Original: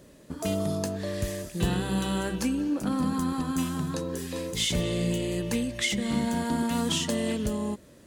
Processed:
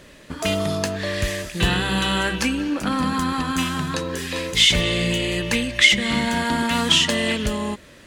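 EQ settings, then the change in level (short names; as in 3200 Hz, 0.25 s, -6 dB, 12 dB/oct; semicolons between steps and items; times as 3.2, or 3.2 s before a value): low shelf 65 Hz +11 dB; bell 2300 Hz +14.5 dB 2.7 oct; +1.5 dB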